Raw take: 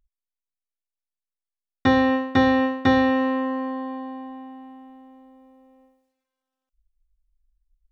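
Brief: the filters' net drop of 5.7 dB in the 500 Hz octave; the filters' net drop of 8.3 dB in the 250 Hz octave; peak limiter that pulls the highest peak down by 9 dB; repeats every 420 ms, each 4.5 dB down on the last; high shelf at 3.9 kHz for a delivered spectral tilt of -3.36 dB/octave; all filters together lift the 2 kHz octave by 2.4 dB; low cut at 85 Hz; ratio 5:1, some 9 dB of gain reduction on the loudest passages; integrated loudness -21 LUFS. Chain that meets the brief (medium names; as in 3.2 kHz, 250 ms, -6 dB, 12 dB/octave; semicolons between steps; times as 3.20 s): high-pass 85 Hz; peaking EQ 250 Hz -7.5 dB; peaking EQ 500 Hz -4.5 dB; peaking EQ 2 kHz +4.5 dB; treble shelf 3.9 kHz -8 dB; compression 5:1, threshold -27 dBFS; peak limiter -24.5 dBFS; feedback delay 420 ms, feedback 60%, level -4.5 dB; trim +10.5 dB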